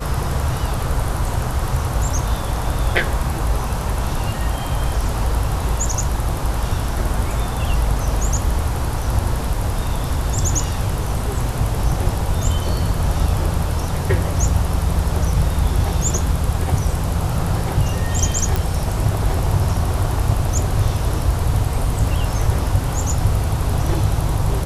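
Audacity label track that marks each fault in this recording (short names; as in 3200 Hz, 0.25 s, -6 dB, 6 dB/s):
18.560000	18.560000	pop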